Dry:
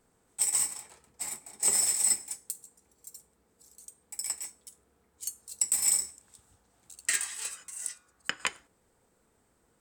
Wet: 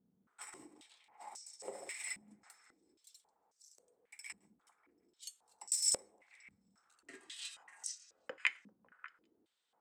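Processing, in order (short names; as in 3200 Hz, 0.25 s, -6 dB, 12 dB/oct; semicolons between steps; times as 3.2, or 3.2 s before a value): delay with a stepping band-pass 0.197 s, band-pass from 260 Hz, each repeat 1.4 oct, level -7 dB; stepped band-pass 3.7 Hz 200–5700 Hz; gain +3.5 dB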